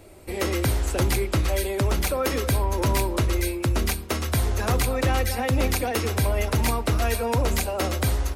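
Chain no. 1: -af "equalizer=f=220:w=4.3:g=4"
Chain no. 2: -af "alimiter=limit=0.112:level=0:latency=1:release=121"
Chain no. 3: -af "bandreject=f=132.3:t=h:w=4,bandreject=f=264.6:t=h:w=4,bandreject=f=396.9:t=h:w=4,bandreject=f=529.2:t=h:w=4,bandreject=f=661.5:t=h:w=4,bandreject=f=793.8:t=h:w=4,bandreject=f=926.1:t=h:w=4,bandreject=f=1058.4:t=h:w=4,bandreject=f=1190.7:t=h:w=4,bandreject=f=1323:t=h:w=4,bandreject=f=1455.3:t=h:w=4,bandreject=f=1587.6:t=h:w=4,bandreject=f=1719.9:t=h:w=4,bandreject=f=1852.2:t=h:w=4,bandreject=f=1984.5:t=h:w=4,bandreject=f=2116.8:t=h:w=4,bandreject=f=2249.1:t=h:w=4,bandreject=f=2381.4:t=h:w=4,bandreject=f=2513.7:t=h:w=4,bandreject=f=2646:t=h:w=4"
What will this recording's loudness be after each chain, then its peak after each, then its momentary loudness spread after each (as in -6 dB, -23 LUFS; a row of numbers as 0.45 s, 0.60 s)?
-24.0 LUFS, -28.0 LUFS, -24.5 LUFS; -13.5 dBFS, -19.0 dBFS, -13.5 dBFS; 2 LU, 1 LU, 2 LU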